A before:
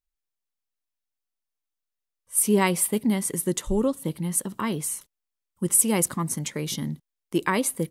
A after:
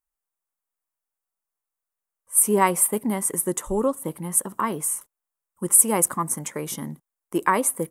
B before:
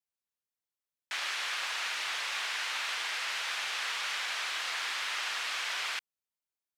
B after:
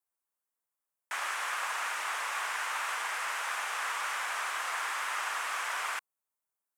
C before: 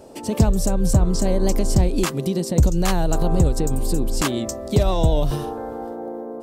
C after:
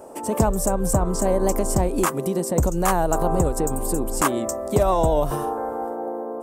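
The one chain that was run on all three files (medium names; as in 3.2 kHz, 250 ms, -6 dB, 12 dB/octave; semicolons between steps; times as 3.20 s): FFT filter 120 Hz 0 dB, 1.1 kHz +14 dB, 4.2 kHz -4 dB, 8.4 kHz +11 dB; trim -6.5 dB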